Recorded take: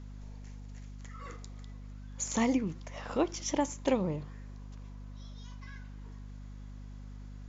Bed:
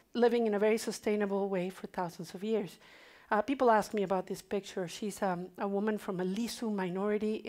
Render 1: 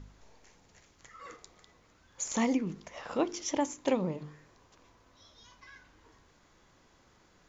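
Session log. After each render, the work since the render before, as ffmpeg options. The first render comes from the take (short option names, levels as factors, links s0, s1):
-af "bandreject=f=50:t=h:w=4,bandreject=f=100:t=h:w=4,bandreject=f=150:t=h:w=4,bandreject=f=200:t=h:w=4,bandreject=f=250:t=h:w=4,bandreject=f=300:t=h:w=4,bandreject=f=350:t=h:w=4,bandreject=f=400:t=h:w=4,bandreject=f=450:t=h:w=4"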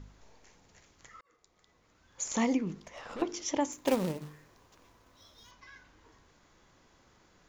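-filter_complex "[0:a]asettb=1/sr,asplit=3[s0][s1][s2];[s0]atrim=end=2.794[s3];[s1]atrim=start=2.79:end=3.22,asetpts=PTS-STARTPTS,afade=t=in:d=0.004:c=qsin,afade=t=out:st=0.426:d=0.004:c=qsin,aeval=exprs='(tanh(70.8*val(0)+0.25)-tanh(0.25))/70.8':c=same[s4];[s2]atrim=start=3.216[s5];[s3][s4]acrossfade=d=0.004:c1=hsin:c2=qsin[s6];[s6][s5]acrossfade=d=0.004:c1=qsin:c2=hsin,asettb=1/sr,asplit=3[s7][s8][s9];[s7]atrim=end=3.724[s10];[s8]atrim=start=3.72:end=5.51,asetpts=PTS-STARTPTS,afade=t=in:d=0.004:c=qsin,afade=t=out:st=1.786:d=0.004:c=qsin,acrusher=bits=3:mode=log:mix=0:aa=0.000001[s11];[s9]atrim=start=5.506[s12];[s10][s11]acrossfade=d=0.004:c1=hsin:c2=qsin[s13];[s13][s12]acrossfade=d=0.004:c1=qsin:c2=hsin,asplit=2[s14][s15];[s14]atrim=end=1.21,asetpts=PTS-STARTPTS,afade=t=out:st=1.206:d=0.004:c=hsin[s16];[s15]atrim=start=1.21,asetpts=PTS-STARTPTS,afade=t=in:d=1.02[s17];[s16][s17]concat=n=2:v=0:a=1"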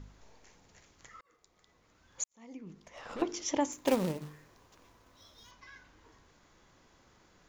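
-filter_complex "[0:a]asplit=2[s0][s1];[s0]atrim=end=2.24,asetpts=PTS-STARTPTS,afade=t=out:st=2.236:d=0.004:c=hsin[s2];[s1]atrim=start=2.24,asetpts=PTS-STARTPTS,afade=t=in:d=0.86:c=qua[s3];[s2][s3]concat=n=2:v=0:a=1"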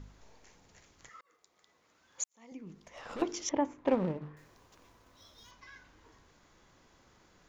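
-filter_complex "[0:a]asettb=1/sr,asplit=3[s0][s1][s2];[s0]atrim=end=1.094[s3];[s1]atrim=start=1.09:end=2.52,asetpts=PTS-STARTPTS,afade=t=in:d=0.004:c=qsin,afade=t=out:st=1.426:d=0.004:c=qsin,highpass=f=350:p=1[s4];[s2]atrim=start=2.516[s5];[s3][s4]acrossfade=d=0.004:c1=hsin:c2=qsin[s6];[s6][s5]acrossfade=d=0.004:c1=qsin:c2=hsin,asettb=1/sr,asplit=3[s7][s8][s9];[s7]atrim=end=3.494[s10];[s8]atrim=start=3.49:end=4.37,asetpts=PTS-STARTPTS,afade=t=in:d=0.004:c=qsin,afade=t=out:st=0.876:d=0.004:c=qsin,lowpass=1800[s11];[s9]atrim=start=4.366[s12];[s10][s11]acrossfade=d=0.004:c1=hsin:c2=qsin[s13];[s13][s12]acrossfade=d=0.004:c1=qsin:c2=hsin"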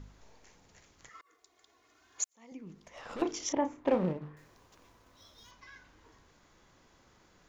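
-filter_complex "[0:a]asettb=1/sr,asplit=3[s0][s1][s2];[s0]atrim=end=1.144[s3];[s1]atrim=start=1.14:end=2.34,asetpts=PTS-STARTPTS,afade=t=in:d=0.004:c=qsin,afade=t=out:st=1.196:d=0.004:c=qsin,aecho=1:1:2.8:0.95,atrim=end_sample=52920[s4];[s2]atrim=start=2.336[s5];[s3][s4]acrossfade=d=0.004:c1=hsin:c2=qsin[s6];[s6][s5]acrossfade=d=0.004:c1=qsin:c2=hsin,asettb=1/sr,asplit=3[s7][s8][s9];[s7]atrim=end=3.224[s10];[s8]atrim=start=3.22:end=4.13,asetpts=PTS-STARTPTS,afade=t=in:d=0.004:c=qsin,afade=t=out:st=0.906:d=0.004:c=qsin,asplit=2[s11][s12];[s12]adelay=33,volume=0.398[s13];[s11][s13]amix=inputs=2:normalize=0,atrim=end_sample=40131[s14];[s9]atrim=start=4.126[s15];[s10][s14]acrossfade=d=0.004:c1=hsin:c2=qsin[s16];[s16][s15]acrossfade=d=0.004:c1=qsin:c2=hsin"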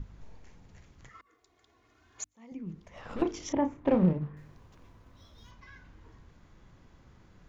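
-af "bass=f=250:g=13,treble=f=4000:g=-7,bandreject=f=50:t=h:w=6,bandreject=f=100:t=h:w=6,bandreject=f=150:t=h:w=6,bandreject=f=200:t=h:w=6,bandreject=f=250:t=h:w=6,bandreject=f=300:t=h:w=6"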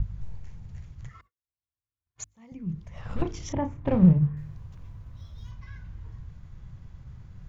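-af "agate=range=0.00891:threshold=0.00126:ratio=16:detection=peak,lowshelf=f=190:t=q:w=1.5:g=13"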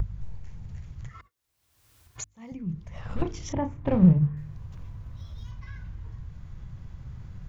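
-af "acompressor=mode=upward:threshold=0.0224:ratio=2.5"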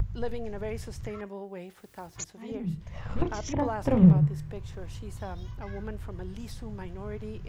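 -filter_complex "[1:a]volume=0.422[s0];[0:a][s0]amix=inputs=2:normalize=0"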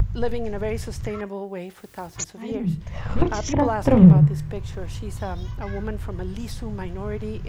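-af "volume=2.51,alimiter=limit=0.708:level=0:latency=1"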